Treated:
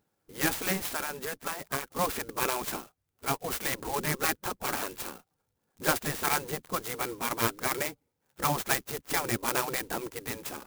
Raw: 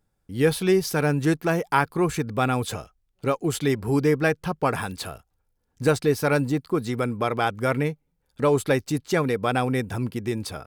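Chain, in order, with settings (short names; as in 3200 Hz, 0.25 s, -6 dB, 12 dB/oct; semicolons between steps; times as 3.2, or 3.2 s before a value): 0.83–1.99 compressor 4:1, threshold -25 dBFS, peak gain reduction 9.5 dB; spectral gate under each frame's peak -10 dB weak; clock jitter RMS 0.077 ms; gain +2.5 dB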